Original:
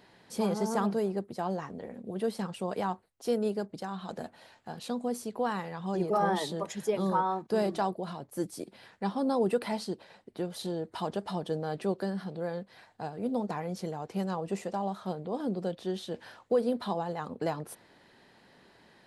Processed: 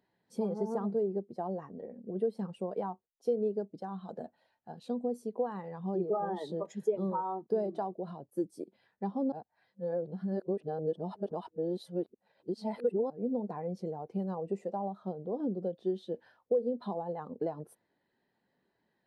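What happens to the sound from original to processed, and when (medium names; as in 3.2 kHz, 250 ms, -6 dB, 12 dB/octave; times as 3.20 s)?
9.32–13.10 s: reverse
whole clip: compression 6:1, threshold -31 dBFS; dynamic bell 450 Hz, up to +4 dB, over -44 dBFS, Q 0.83; spectral contrast expander 1.5:1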